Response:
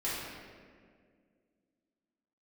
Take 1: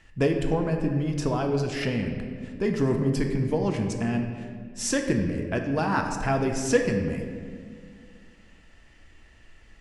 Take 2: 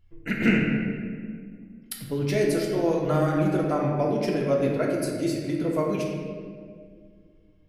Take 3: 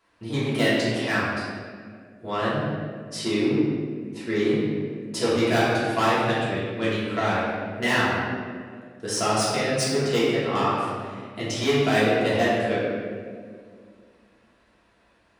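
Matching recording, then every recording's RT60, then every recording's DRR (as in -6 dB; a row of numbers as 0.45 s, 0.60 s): 3; 2.0 s, 2.0 s, 2.0 s; 3.0 dB, -2.0 dB, -10.0 dB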